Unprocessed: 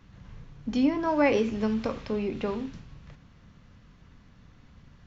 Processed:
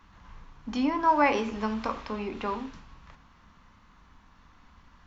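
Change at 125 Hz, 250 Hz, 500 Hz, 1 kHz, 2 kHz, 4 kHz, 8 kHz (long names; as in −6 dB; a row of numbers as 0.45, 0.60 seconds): −6.0 dB, −3.5 dB, −4.0 dB, +7.5 dB, +2.0 dB, +0.5 dB, can't be measured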